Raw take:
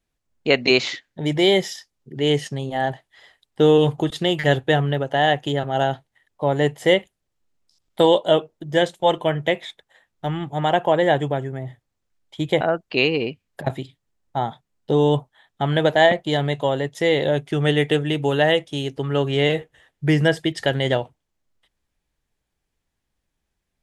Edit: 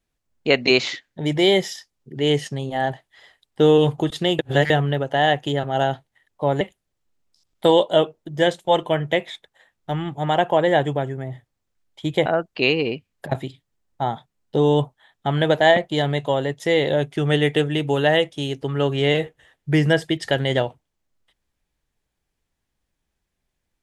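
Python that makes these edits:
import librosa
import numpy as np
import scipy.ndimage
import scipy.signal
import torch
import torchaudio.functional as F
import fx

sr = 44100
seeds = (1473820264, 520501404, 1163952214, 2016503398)

y = fx.edit(x, sr, fx.reverse_span(start_s=4.39, length_s=0.31),
    fx.cut(start_s=6.61, length_s=0.35), tone=tone)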